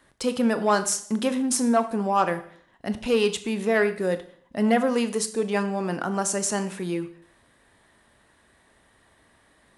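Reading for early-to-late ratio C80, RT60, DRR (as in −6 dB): 17.0 dB, 0.55 s, 10.0 dB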